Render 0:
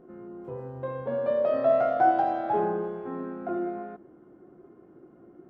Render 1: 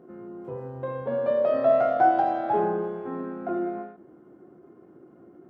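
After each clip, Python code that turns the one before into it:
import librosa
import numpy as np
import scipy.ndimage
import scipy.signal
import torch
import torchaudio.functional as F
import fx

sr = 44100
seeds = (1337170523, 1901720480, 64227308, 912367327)

y = scipy.signal.sosfilt(scipy.signal.butter(2, 81.0, 'highpass', fs=sr, output='sos'), x)
y = fx.end_taper(y, sr, db_per_s=110.0)
y = y * librosa.db_to_amplitude(2.0)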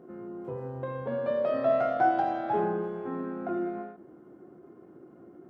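y = fx.dynamic_eq(x, sr, hz=620.0, q=0.77, threshold_db=-35.0, ratio=4.0, max_db=-5)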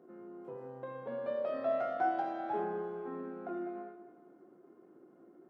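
y = scipy.signal.sosfilt(scipy.signal.butter(2, 220.0, 'highpass', fs=sr, output='sos'), x)
y = fx.echo_feedback(y, sr, ms=199, feedback_pct=44, wet_db=-14)
y = y * librosa.db_to_amplitude(-7.5)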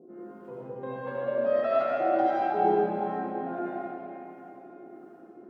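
y = fx.dereverb_blind(x, sr, rt60_s=1.5)
y = fx.harmonic_tremolo(y, sr, hz=1.5, depth_pct=100, crossover_hz=680.0)
y = fx.rev_freeverb(y, sr, rt60_s=4.0, hf_ratio=0.75, predelay_ms=40, drr_db=-8.5)
y = y * librosa.db_to_amplitude(8.0)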